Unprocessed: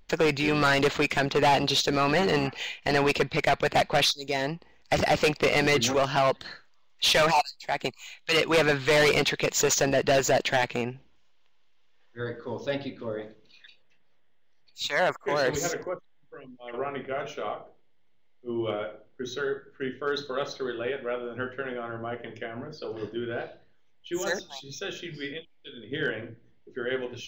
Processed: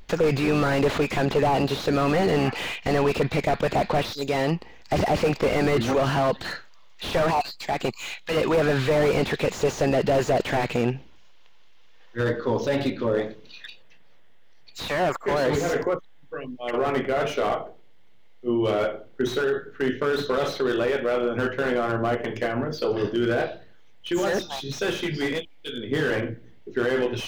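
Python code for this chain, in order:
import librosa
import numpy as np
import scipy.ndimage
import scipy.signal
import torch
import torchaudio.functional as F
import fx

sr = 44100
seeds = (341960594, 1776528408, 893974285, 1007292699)

p1 = fx.over_compress(x, sr, threshold_db=-33.0, ratio=-1.0)
p2 = x + (p1 * librosa.db_to_amplitude(0.0))
p3 = fx.slew_limit(p2, sr, full_power_hz=67.0)
y = p3 * librosa.db_to_amplitude(2.0)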